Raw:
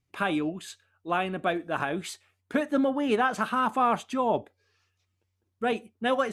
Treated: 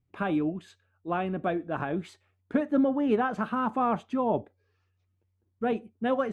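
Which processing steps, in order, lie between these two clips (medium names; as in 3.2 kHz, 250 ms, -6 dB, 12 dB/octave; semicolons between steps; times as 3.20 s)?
low-pass 1.5 kHz 6 dB/octave; bass shelf 410 Hz +7 dB; trim -3 dB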